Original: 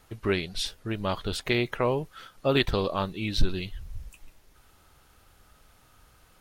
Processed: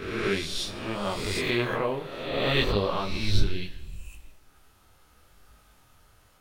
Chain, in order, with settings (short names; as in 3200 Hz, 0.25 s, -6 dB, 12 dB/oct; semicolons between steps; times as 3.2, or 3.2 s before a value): spectral swells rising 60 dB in 1.34 s; reverb RT60 1.2 s, pre-delay 30 ms, DRR 13 dB; detuned doubles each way 25 cents